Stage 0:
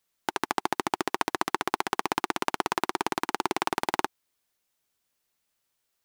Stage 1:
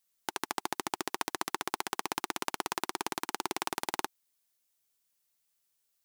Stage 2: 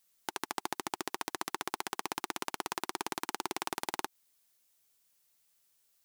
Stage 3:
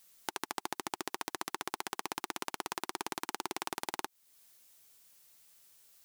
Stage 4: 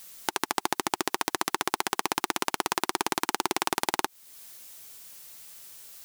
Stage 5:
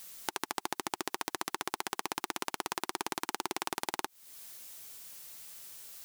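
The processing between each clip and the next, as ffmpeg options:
-af "highshelf=f=4k:g=10.5,volume=-8dB"
-af "alimiter=limit=-16.5dB:level=0:latency=1:release=120,volume=5.5dB"
-af "acompressor=threshold=-51dB:ratio=2,volume=9.5dB"
-af "alimiter=level_in=16dB:limit=-1dB:release=50:level=0:latency=1,volume=-1dB"
-af "acompressor=threshold=-33dB:ratio=2,volume=-1.5dB"

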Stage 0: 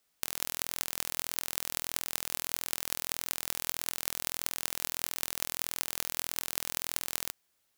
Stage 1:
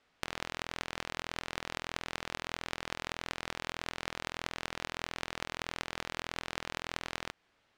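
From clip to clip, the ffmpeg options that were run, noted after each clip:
-af "lowpass=2.7k,acompressor=threshold=-42dB:ratio=6,volume=10.5dB"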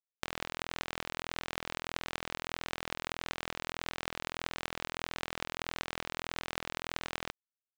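-af "acrusher=bits=5:mix=0:aa=0.5"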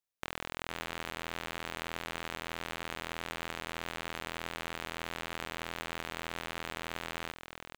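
-af "asoftclip=type=tanh:threshold=-22dB,aecho=1:1:470:0.422,volume=3.5dB"

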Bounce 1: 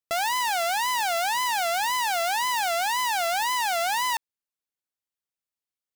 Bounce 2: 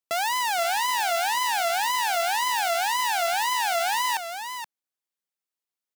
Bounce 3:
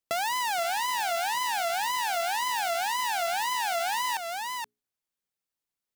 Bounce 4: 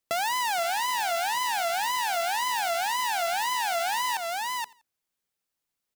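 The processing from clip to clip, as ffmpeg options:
-filter_complex "[0:a]highpass=180,asplit=2[a][b];[b]aecho=0:1:474:0.376[c];[a][c]amix=inputs=2:normalize=0"
-af "lowshelf=f=210:g=10,bandreject=f=60:t=h:w=6,bandreject=f=120:t=h:w=6,bandreject=f=180:t=h:w=6,bandreject=f=240:t=h:w=6,bandreject=f=300:t=h:w=6,bandreject=f=360:t=h:w=6,bandreject=f=420:t=h:w=6,acompressor=threshold=-28dB:ratio=2.5"
-filter_complex "[0:a]asplit=2[a][b];[b]alimiter=level_in=8dB:limit=-24dB:level=0:latency=1:release=93,volume=-8dB,volume=-1.5dB[c];[a][c]amix=inputs=2:normalize=0,aecho=1:1:85|170:0.0668|0.0254,volume=-1dB"

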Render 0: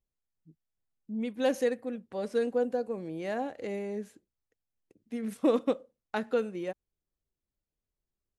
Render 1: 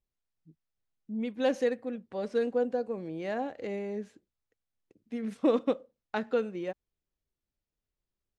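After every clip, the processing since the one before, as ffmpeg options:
-af "lowpass=5.8k"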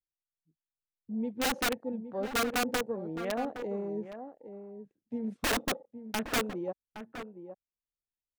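-filter_complex "[0:a]afwtdn=0.00891,aeval=exprs='(mod(15*val(0)+1,2)-1)/15':c=same,asplit=2[a][b];[b]adelay=816.3,volume=-10dB,highshelf=f=4k:g=-18.4[c];[a][c]amix=inputs=2:normalize=0"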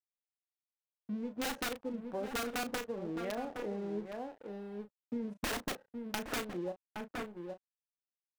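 -filter_complex "[0:a]acompressor=threshold=-38dB:ratio=6,aeval=exprs='sgn(val(0))*max(abs(val(0))-0.00141,0)':c=same,asplit=2[a][b];[b]adelay=34,volume=-9.5dB[c];[a][c]amix=inputs=2:normalize=0,volume=3.5dB"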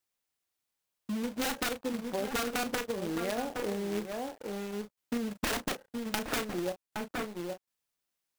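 -filter_complex "[0:a]asplit=2[a][b];[b]acompressor=threshold=-45dB:ratio=5,volume=-1.5dB[c];[a][c]amix=inputs=2:normalize=0,acrusher=bits=2:mode=log:mix=0:aa=0.000001,volume=2dB"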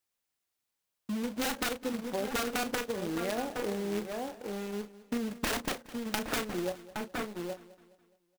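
-af "aecho=1:1:209|418|627|836:0.126|0.0579|0.0266|0.0123"

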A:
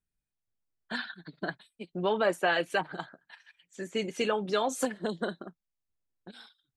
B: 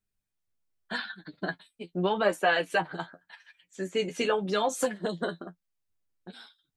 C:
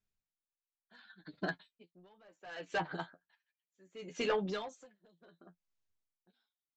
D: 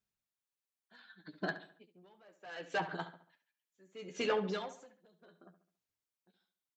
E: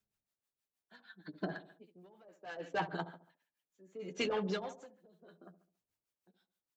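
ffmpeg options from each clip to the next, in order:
-af "flanger=delay=9.6:depth=2.3:regen=31:speed=0.84:shape=sinusoidal,volume=5.5dB"
-af "aresample=16000,asoftclip=type=tanh:threshold=-22dB,aresample=44100,aeval=exprs='val(0)*pow(10,-32*(0.5-0.5*cos(2*PI*0.69*n/s))/20)':c=same,volume=-2.5dB"
-filter_complex "[0:a]highpass=f=99:p=1,asplit=2[a][b];[b]adelay=70,lowpass=f=3.8k:p=1,volume=-12dB,asplit=2[c][d];[d]adelay=70,lowpass=f=3.8k:p=1,volume=0.43,asplit=2[e][f];[f]adelay=70,lowpass=f=3.8k:p=1,volume=0.43,asplit=2[g][h];[h]adelay=70,lowpass=f=3.8k:p=1,volume=0.43[i];[c][e][g][i]amix=inputs=4:normalize=0[j];[a][j]amix=inputs=2:normalize=0"
-filter_complex "[0:a]acrossover=split=180|840[a][b][c];[b]alimiter=level_in=9.5dB:limit=-24dB:level=0:latency=1:release=280,volume=-9.5dB[d];[c]tremolo=f=6.4:d=0.99[e];[a][d][e]amix=inputs=3:normalize=0,volume=3.5dB"

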